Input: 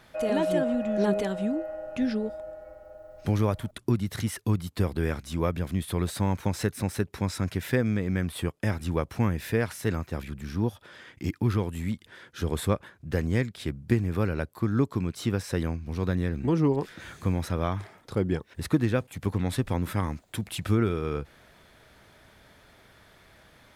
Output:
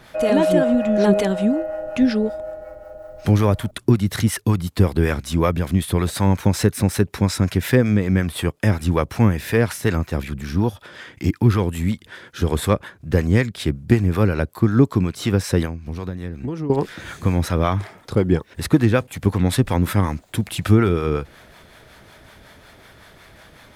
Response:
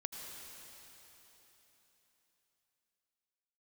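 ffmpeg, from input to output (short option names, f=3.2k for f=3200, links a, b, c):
-filter_complex "[0:a]acontrast=75,acrossover=split=560[a][b];[a]aeval=exprs='val(0)*(1-0.5/2+0.5/2*cos(2*PI*5.4*n/s))':c=same[c];[b]aeval=exprs='val(0)*(1-0.5/2-0.5/2*cos(2*PI*5.4*n/s))':c=same[d];[c][d]amix=inputs=2:normalize=0,asettb=1/sr,asplit=3[e][f][g];[e]atrim=end=15.654[h];[f]atrim=start=15.65:end=16.7,asetpts=PTS-STARTPTS,afade=t=in:d=0.004:c=qsin,afade=t=out:st=1.046:d=0.004:c=qsin,acompressor=threshold=-29dB:ratio=8[i];[g]atrim=start=16.696[j];[h][i]acrossfade=d=0.004:c1=hsin:c2=qsin[k];[k][j]acrossfade=d=0.004:c1=qsin:c2=hsin,volume=4.5dB"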